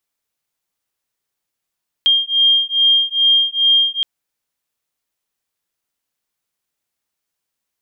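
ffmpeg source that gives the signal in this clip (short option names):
-f lavfi -i "aevalsrc='0.188*(sin(2*PI*3210*t)+sin(2*PI*3212.4*t))':d=1.97:s=44100"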